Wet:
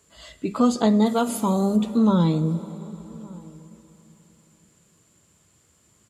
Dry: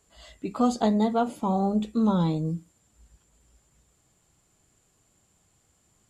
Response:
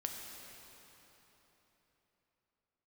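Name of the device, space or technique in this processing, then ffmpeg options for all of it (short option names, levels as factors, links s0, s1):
ducked reverb: -filter_complex "[0:a]asplit=3[s0][s1][s2];[s0]afade=t=out:st=1.05:d=0.02[s3];[s1]aemphasis=mode=production:type=75fm,afade=t=in:st=1.05:d=0.02,afade=t=out:st=1.76:d=0.02[s4];[s2]afade=t=in:st=1.76:d=0.02[s5];[s3][s4][s5]amix=inputs=3:normalize=0,asplit=3[s6][s7][s8];[1:a]atrim=start_sample=2205[s9];[s7][s9]afir=irnorm=-1:irlink=0[s10];[s8]apad=whole_len=268846[s11];[s10][s11]sidechaincompress=threshold=0.0562:ratio=8:attack=7.2:release=204,volume=0.398[s12];[s6][s12]amix=inputs=2:normalize=0,highpass=72,equalizer=f=760:t=o:w=0.21:g=-10.5,asplit=2[s13][s14];[s14]adelay=1166,volume=0.0708,highshelf=f=4000:g=-26.2[s15];[s13][s15]amix=inputs=2:normalize=0,volume=1.5"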